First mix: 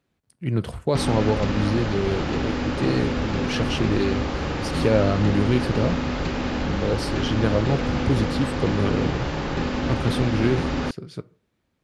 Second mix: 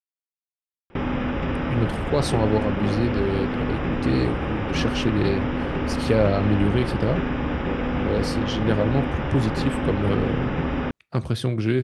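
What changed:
speech: entry +1.25 s; background: add polynomial smoothing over 25 samples

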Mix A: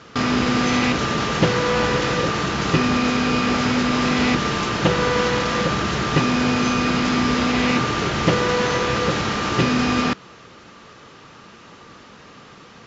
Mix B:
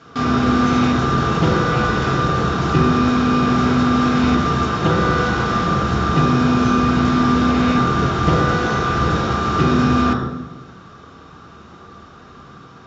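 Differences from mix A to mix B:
background -6.5 dB; reverb: on, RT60 1.1 s

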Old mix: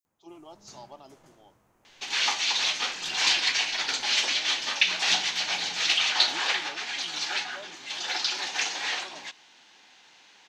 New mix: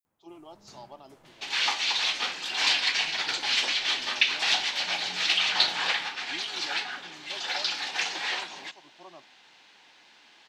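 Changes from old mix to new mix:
second sound: entry -0.60 s; master: add bell 6400 Hz -6.5 dB 0.45 oct

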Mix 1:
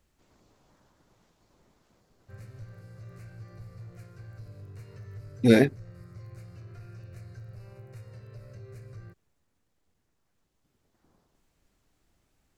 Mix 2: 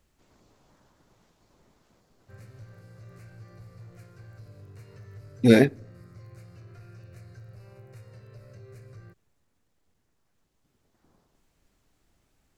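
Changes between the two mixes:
speech: send on; background: add low shelf 65 Hz -9.5 dB

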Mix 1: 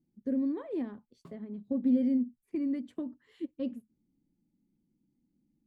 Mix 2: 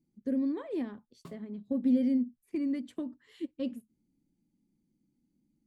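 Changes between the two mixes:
background +3.5 dB; master: add high shelf 2300 Hz +9 dB

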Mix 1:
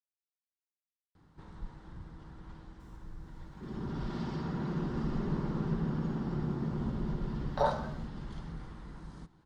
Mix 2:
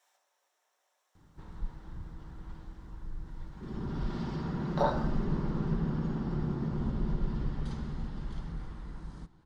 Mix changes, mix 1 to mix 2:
speech: entry -2.80 s; master: add low shelf 62 Hz +8.5 dB

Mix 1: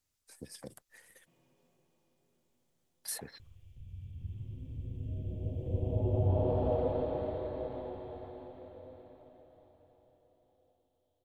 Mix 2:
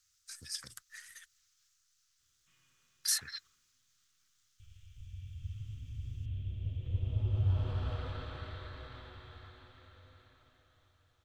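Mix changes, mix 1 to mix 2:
background: entry +1.20 s; master: add EQ curve 110 Hz 0 dB, 170 Hz -11 dB, 610 Hz -19 dB, 880 Hz -12 dB, 1300 Hz +11 dB, 2300 Hz +6 dB, 3900 Hz +11 dB, 6200 Hz +15 dB, 10000 Hz +4 dB

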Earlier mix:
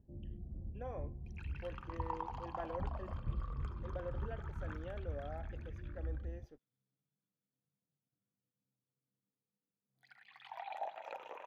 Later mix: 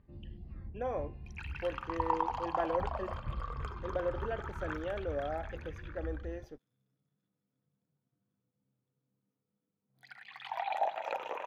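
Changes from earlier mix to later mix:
speech +10.0 dB; first sound: remove steep low-pass 720 Hz 36 dB/oct; second sound +10.0 dB

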